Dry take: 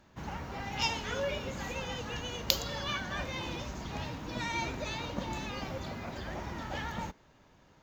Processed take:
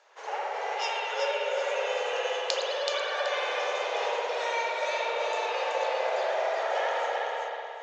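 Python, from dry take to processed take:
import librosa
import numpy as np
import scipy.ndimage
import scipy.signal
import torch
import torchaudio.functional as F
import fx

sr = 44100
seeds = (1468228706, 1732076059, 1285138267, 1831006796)

y = scipy.signal.sosfilt(scipy.signal.cheby1(5, 1.0, [430.0, 9000.0], 'bandpass', fs=sr, output='sos'), x)
y = fx.dynamic_eq(y, sr, hz=560.0, q=1.5, threshold_db=-53.0, ratio=4.0, max_db=7)
y = fx.rider(y, sr, range_db=4, speed_s=0.5)
y = fx.echo_feedback(y, sr, ms=378, feedback_pct=26, wet_db=-3.5)
y = fx.rev_spring(y, sr, rt60_s=2.1, pass_ms=(58,), chirp_ms=50, drr_db=-4.0)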